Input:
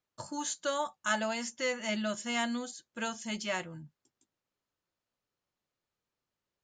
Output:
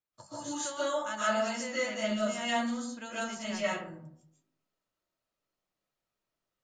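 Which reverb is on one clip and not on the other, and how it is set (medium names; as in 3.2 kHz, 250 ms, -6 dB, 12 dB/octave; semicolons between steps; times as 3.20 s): algorithmic reverb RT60 0.68 s, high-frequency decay 0.4×, pre-delay 100 ms, DRR -10 dB; trim -9 dB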